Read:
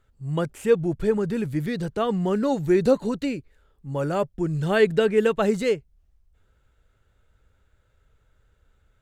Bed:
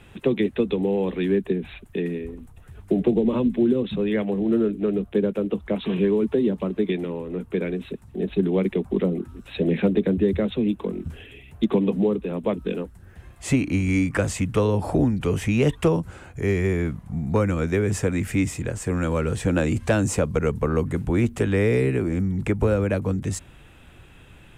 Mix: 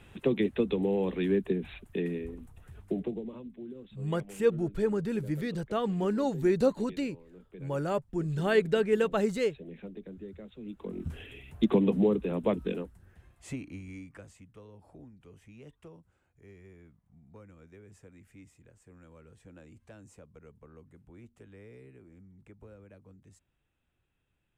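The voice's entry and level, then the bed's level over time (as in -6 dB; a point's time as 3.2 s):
3.75 s, -6.0 dB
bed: 2.74 s -5.5 dB
3.44 s -23.5 dB
10.57 s -23.5 dB
11.07 s -3.5 dB
12.54 s -3.5 dB
14.54 s -31 dB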